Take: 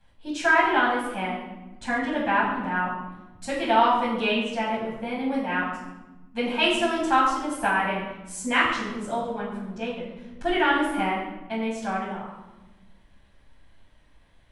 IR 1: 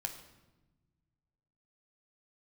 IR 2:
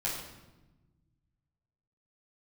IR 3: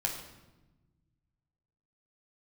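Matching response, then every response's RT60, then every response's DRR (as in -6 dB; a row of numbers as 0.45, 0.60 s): 2; 1.1, 1.1, 1.1 s; 4.0, -8.0, -0.5 dB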